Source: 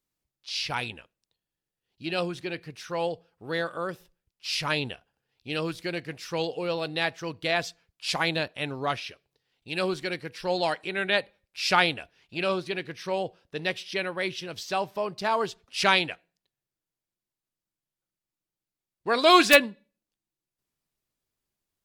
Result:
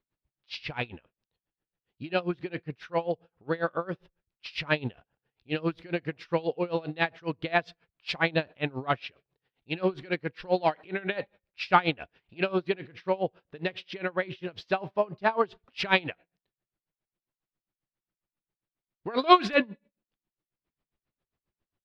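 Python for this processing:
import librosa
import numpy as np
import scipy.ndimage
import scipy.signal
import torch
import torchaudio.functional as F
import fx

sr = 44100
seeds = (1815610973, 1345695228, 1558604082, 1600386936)

p1 = 10.0 ** (-16.0 / 20.0) * np.tanh(x / 10.0 ** (-16.0 / 20.0))
p2 = x + F.gain(torch.from_numpy(p1), -6.0).numpy()
p3 = fx.air_absorb(p2, sr, metres=340.0)
p4 = p3 * 10.0 ** (-24 * (0.5 - 0.5 * np.cos(2.0 * np.pi * 7.4 * np.arange(len(p3)) / sr)) / 20.0)
y = F.gain(torch.from_numpy(p4), 4.0).numpy()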